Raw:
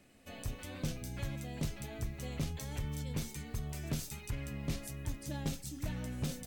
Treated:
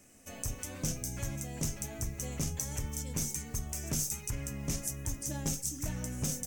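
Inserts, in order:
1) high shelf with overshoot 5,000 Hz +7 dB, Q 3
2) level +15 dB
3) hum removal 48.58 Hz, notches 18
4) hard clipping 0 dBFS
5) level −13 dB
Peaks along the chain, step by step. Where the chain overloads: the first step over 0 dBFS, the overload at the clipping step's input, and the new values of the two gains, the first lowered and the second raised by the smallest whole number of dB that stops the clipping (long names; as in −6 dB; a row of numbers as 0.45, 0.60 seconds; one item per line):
−19.5, −4.5, −4.5, −4.5, −17.5 dBFS
no step passes full scale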